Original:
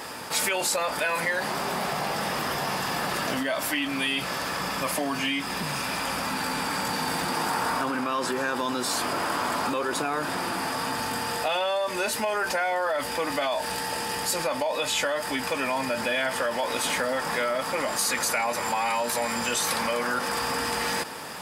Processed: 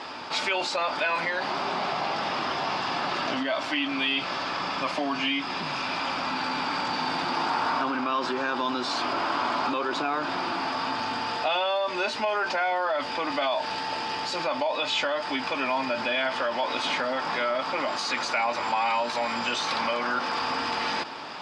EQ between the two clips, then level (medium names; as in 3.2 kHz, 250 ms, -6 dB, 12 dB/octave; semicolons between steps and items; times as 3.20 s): cabinet simulation 130–4800 Hz, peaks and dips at 140 Hz -7 dB, 200 Hz -8 dB, 480 Hz -8 dB, 1.8 kHz -6 dB; +2.0 dB